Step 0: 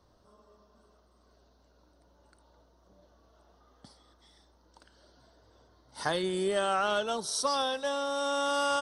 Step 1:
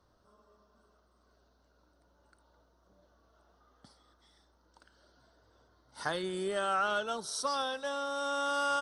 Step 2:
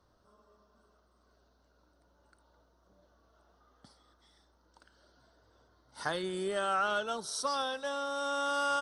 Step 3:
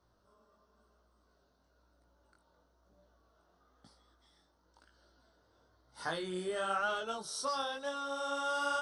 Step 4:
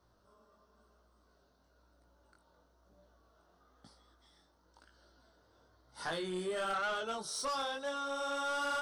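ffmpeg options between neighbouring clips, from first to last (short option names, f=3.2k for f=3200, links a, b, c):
-af "equalizer=f=1.4k:t=o:w=0.48:g=6,volume=-5dB"
-af anull
-af "flanger=delay=17:depth=5.8:speed=1"
-af "asoftclip=type=tanh:threshold=-32dB,volume=2dB"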